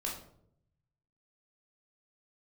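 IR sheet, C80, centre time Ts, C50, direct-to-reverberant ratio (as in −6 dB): 9.5 dB, 34 ms, 5.0 dB, −2.5 dB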